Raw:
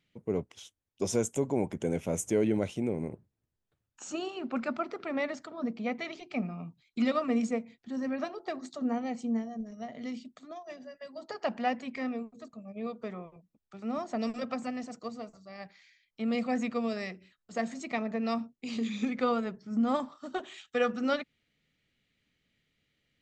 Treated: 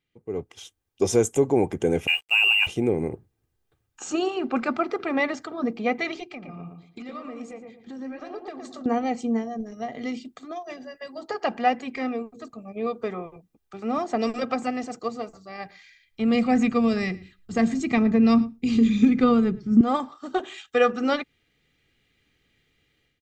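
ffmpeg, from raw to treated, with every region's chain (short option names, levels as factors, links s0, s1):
-filter_complex "[0:a]asettb=1/sr,asplit=3[s0][s1][s2];[s0]atrim=end=2.074[s3];[s1]atrim=start=2.07:end=2.67,asetpts=PTS-STARTPTS,afade=t=in:d=0.004:c=qsin,afade=t=out:st=0.596:d=0.004:c=qsin,lowpass=f=2600:t=q:w=0.5098,lowpass=f=2600:t=q:w=0.6013,lowpass=f=2600:t=q:w=0.9,lowpass=f=2600:t=q:w=2.563,afreqshift=-3000,aeval=exprs='sgn(val(0))*max(abs(val(0))-0.00266,0)':c=same[s4];[s2]atrim=start=2.666[s5];[s3][s4]acrossfade=d=0.004:c1=hsin:c2=qsin[s6];[s6][s5]acrossfade=d=0.004:c1=qsin:c2=hsin,asettb=1/sr,asplit=3[s7][s8][s9];[s7]atrim=end=6.244[s10];[s8]atrim=start=6.24:end=8.86,asetpts=PTS-STARTPTS,afade=t=in:d=0.004:c=qsin,afade=t=out:st=2.616:d=0.004:c=qsin,flanger=delay=1.8:depth=9.7:regen=-66:speed=1.4:shape=sinusoidal,acompressor=threshold=0.00794:ratio=12:attack=3.2:release=140:knee=1:detection=peak,asplit=2[s11][s12];[s12]adelay=115,lowpass=f=1500:p=1,volume=0.596,asplit=2[s13][s14];[s14]adelay=115,lowpass=f=1500:p=1,volume=0.3,asplit=2[s15][s16];[s16]adelay=115,lowpass=f=1500:p=1,volume=0.3,asplit=2[s17][s18];[s18]adelay=115,lowpass=f=1500:p=1,volume=0.3[s19];[s11][s13][s15][s17][s19]amix=inputs=5:normalize=0,atrim=end_sample=115542[s20];[s9]atrim=start=8.856[s21];[s10][s20]acrossfade=d=0.004:c1=hsin:c2=qsin[s22];[s22][s21]acrossfade=d=0.004:c1=qsin:c2=hsin,asettb=1/sr,asplit=3[s23][s24][s25];[s23]atrim=end=15.604[s26];[s24]atrim=start=15.6:end=19.81,asetpts=PTS-STARTPTS,afade=t=in:d=0.004:c=qsin,afade=t=out:st=4.206:d=0.004:c=qsin,asubboost=boost=11.5:cutoff=210,aecho=1:1:110:0.0794,atrim=end_sample=185661[s27];[s25]atrim=start=19.806[s28];[s26][s27]acrossfade=d=0.004:c1=hsin:c2=qsin[s29];[s29][s28]acrossfade=d=0.004:c1=qsin:c2=hsin,equalizer=f=5700:w=0.61:g=-2.5,aecho=1:1:2.5:0.41,dynaudnorm=f=320:g=3:m=5.01,volume=0.562"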